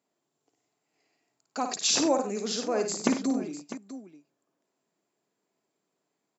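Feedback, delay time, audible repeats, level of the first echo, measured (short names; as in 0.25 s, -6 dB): no steady repeat, 55 ms, 3, -7.0 dB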